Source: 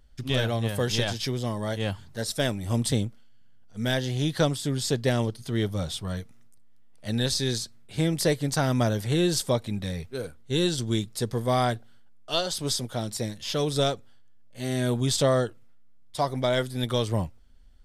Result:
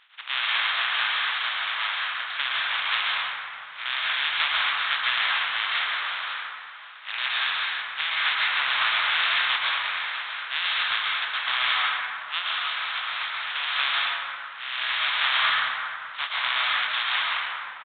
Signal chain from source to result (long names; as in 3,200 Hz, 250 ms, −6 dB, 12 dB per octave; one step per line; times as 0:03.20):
compressing power law on the bin magnitudes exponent 0.17
high-pass filter 1,100 Hz 24 dB per octave
in parallel at −9 dB: soft clipping −21.5 dBFS, distortion −11 dB
on the sum: dense smooth reverb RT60 2.5 s, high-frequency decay 0.45×, pre-delay 105 ms, DRR −5.5 dB
downsampling to 8,000 Hz